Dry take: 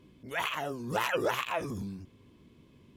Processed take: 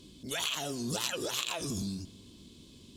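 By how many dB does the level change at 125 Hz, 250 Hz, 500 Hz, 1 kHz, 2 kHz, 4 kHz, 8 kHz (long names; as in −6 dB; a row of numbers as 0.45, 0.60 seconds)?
+0.5, +1.0, −6.0, −8.5, −5.5, +6.0, +11.0 decibels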